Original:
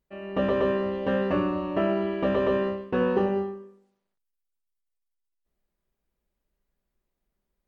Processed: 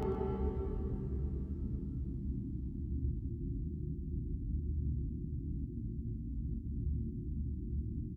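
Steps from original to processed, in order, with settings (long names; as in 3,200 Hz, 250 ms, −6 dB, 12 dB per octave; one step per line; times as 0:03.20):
mains hum 60 Hz, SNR 12 dB
tempo change 0.94×
granular cloud 100 ms, pitch spread up and down by 3 semitones
extreme stretch with random phases 5.4×, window 1.00 s, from 0:03.96
double-tracking delay 26 ms −2 dB
on a send: single-tap delay 122 ms −14.5 dB
on the sum: level +3 dB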